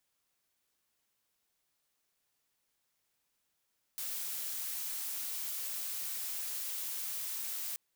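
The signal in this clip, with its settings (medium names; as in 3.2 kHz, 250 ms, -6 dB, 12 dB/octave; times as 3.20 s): noise blue, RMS -38.5 dBFS 3.78 s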